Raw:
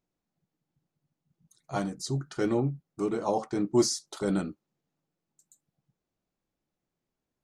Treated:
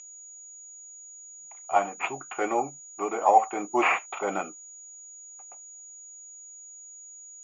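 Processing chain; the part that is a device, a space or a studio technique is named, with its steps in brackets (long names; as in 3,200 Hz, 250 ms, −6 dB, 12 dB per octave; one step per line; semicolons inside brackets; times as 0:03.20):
toy sound module (linearly interpolated sample-rate reduction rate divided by 6×; switching amplifier with a slow clock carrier 6,800 Hz; loudspeaker in its box 670–4,400 Hz, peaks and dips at 760 Hz +10 dB, 1,200 Hz +3 dB, 1,700 Hz −6 dB, 2,400 Hz +10 dB, 4,100 Hz −7 dB)
level +7.5 dB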